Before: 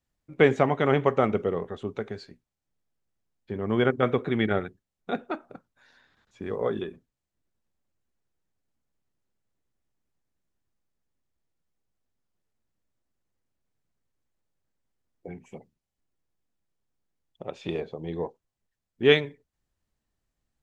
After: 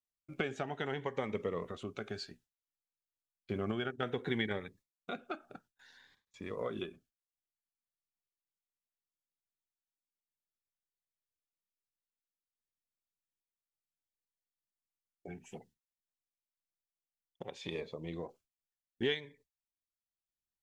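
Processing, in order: gate with hold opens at -54 dBFS; tilt shelf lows -5 dB; compression 6:1, threshold -32 dBFS, peak gain reduction 17.5 dB; random-step tremolo; Shepard-style phaser rising 0.61 Hz; trim +3 dB

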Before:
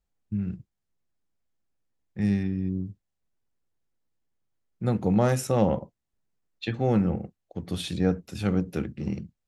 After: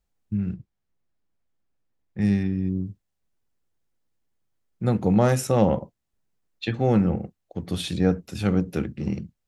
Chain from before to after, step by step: 0.53–2.20 s: treble shelf 5.6 kHz -11.5 dB; trim +3 dB

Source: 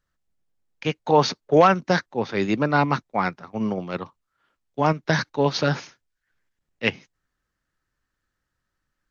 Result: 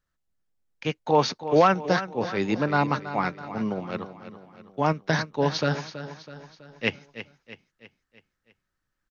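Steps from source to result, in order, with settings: feedback delay 326 ms, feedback 50%, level -12.5 dB; trim -3 dB

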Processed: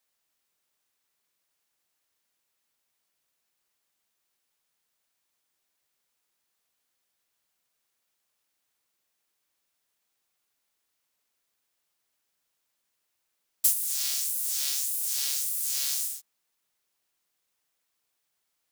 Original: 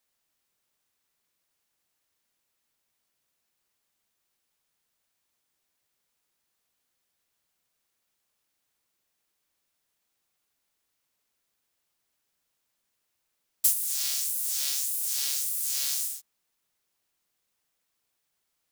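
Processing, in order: bass shelf 270 Hz -5.5 dB

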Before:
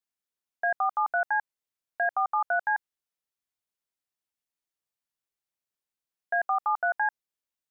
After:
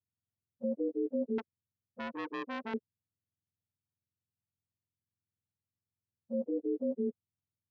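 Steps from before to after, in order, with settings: spectrum inverted on a logarithmic axis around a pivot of 610 Hz; 1.38–2.74 s: transformer saturation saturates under 1.5 kHz; trim -6 dB

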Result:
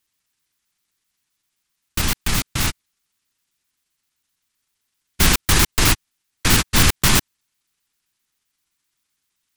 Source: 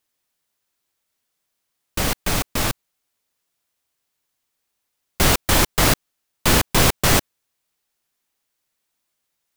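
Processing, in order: pitch shift switched off and on -11 st, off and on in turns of 65 ms; peaking EQ 580 Hz -12 dB 1.2 oct; trim +3 dB

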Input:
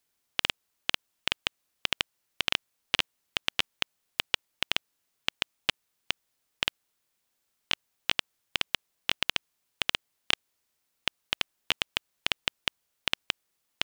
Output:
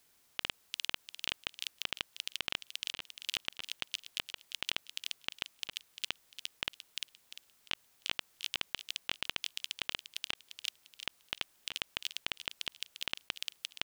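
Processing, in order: feedback echo behind a high-pass 348 ms, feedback 31%, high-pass 4.8 kHz, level -12 dB; compressor with a negative ratio -33 dBFS, ratio -0.5; trim +1 dB

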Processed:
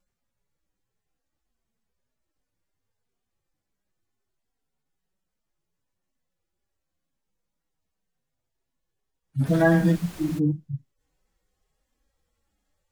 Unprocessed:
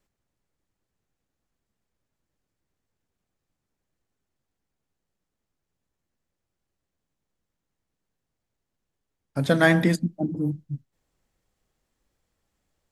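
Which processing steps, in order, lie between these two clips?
harmonic-percussive separation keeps harmonic; in parallel at -1.5 dB: peak limiter -17.5 dBFS, peak gain reduction 8 dB; 9.45–10.38 s: on the sum: added noise pink -41 dBFS; wow and flutter 27 cents; trim -2 dB

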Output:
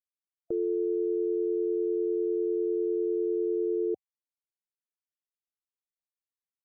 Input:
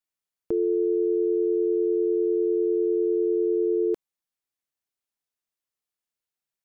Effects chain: loudest bins only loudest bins 32; level-controlled noise filter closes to 460 Hz, open at -25 dBFS; trim -5 dB

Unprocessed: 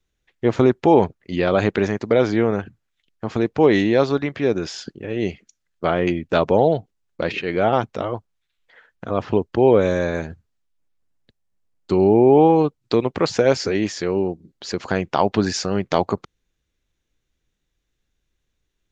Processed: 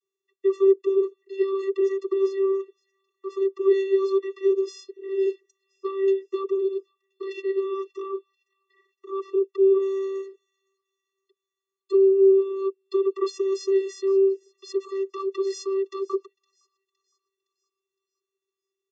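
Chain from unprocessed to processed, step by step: tone controls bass +5 dB, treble +11 dB; comb 1.8 ms, depth 50%; peak limiter -8.5 dBFS, peak gain reduction 7 dB; vocoder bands 32, square 388 Hz; feedback echo behind a high-pass 513 ms, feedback 47%, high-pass 3 kHz, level -22 dB; trim -2.5 dB

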